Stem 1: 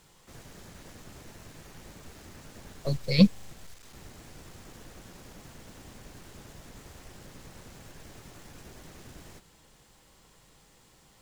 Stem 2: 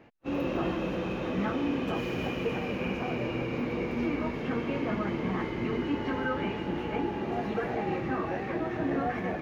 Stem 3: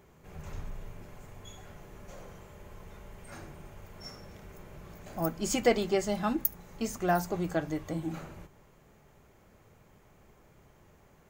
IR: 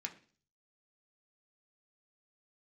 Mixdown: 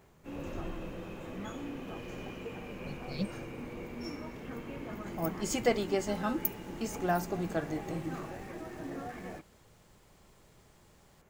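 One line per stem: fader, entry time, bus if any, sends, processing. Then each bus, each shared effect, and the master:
5.13 s -17 dB -> 5.51 s -6.5 dB, 0.00 s, no send, none
-11.5 dB, 0.00 s, no send, bit crusher 11-bit
-3.0 dB, 0.00 s, no send, none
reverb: none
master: none

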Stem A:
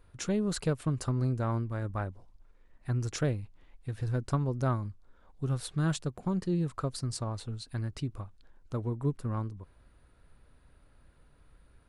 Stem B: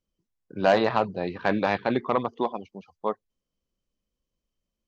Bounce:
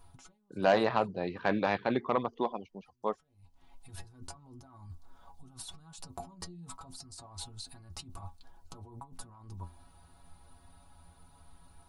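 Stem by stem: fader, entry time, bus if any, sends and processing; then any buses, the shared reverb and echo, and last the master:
+2.0 dB, 0.00 s, no send, FFT filter 250 Hz 0 dB, 530 Hz -7 dB, 780 Hz +11 dB, 1.8 kHz -5 dB, 4.2 kHz +5 dB, 11 kHz +8 dB; compressor with a negative ratio -42 dBFS, ratio -1; inharmonic resonator 84 Hz, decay 0.22 s, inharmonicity 0.008; auto duck -24 dB, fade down 0.65 s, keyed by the second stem
-5.0 dB, 0.00 s, no send, none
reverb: none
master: none

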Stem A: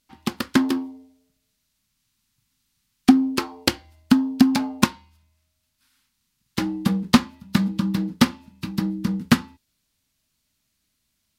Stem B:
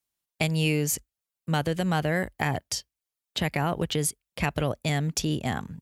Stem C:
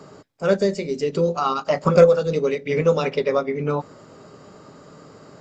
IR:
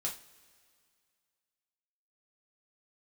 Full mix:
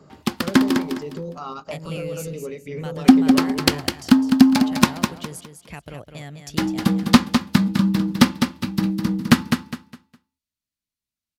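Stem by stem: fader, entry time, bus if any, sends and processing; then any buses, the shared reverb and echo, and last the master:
+2.5 dB, 0.00 s, no send, echo send -6.5 dB, gate with hold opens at -48 dBFS
-10.5 dB, 1.30 s, no send, echo send -7.5 dB, none
-10.0 dB, 0.00 s, no send, no echo send, bass shelf 220 Hz +10.5 dB; peak limiter -14 dBFS, peak gain reduction 14.5 dB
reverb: none
echo: feedback delay 205 ms, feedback 28%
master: none

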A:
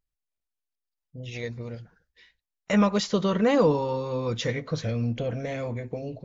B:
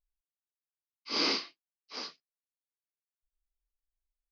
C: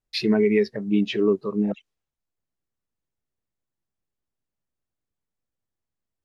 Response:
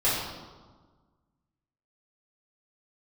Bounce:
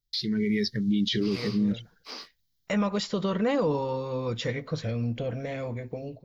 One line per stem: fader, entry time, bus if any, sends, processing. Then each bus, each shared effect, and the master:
-12.0 dB, 0.00 s, no send, band-stop 6.2 kHz, Q 7.6
-11.0 dB, 0.15 s, no send, waveshaping leveller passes 1; compression 10:1, threshold -35 dBFS, peak gain reduction 12 dB
+1.5 dB, 0.00 s, no send, FFT filter 100 Hz 0 dB, 1.1 kHz -22 dB, 2.9 kHz +5 dB; peak limiter -22.5 dBFS, peak gain reduction 11 dB; static phaser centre 2.6 kHz, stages 6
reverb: none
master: level rider gain up to 10 dB; peak limiter -18 dBFS, peak gain reduction 6 dB

